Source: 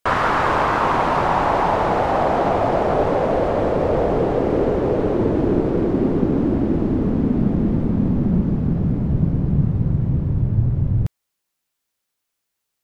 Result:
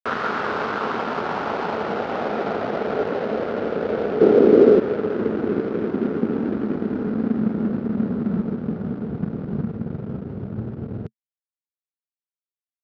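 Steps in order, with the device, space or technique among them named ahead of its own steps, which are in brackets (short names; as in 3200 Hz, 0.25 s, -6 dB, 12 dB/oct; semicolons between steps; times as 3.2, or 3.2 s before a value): 4.21–4.8 bell 340 Hz +10.5 dB 1.6 oct; blown loudspeaker (crossover distortion -25.5 dBFS; speaker cabinet 120–5200 Hz, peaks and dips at 130 Hz -3 dB, 220 Hz +10 dB, 430 Hz +9 dB, 990 Hz -3 dB, 1400 Hz +8 dB); gain -6 dB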